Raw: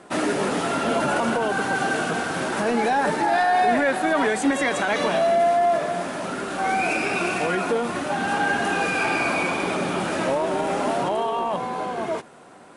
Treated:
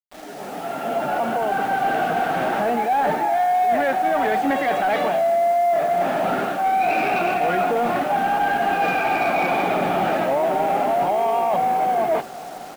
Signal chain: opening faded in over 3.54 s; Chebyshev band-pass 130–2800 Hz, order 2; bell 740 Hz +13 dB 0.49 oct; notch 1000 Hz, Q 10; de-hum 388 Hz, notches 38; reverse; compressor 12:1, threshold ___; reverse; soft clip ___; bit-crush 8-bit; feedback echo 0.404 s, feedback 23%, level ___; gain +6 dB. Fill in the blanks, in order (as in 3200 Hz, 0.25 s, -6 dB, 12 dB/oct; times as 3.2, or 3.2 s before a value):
-21 dBFS, -18.5 dBFS, -22 dB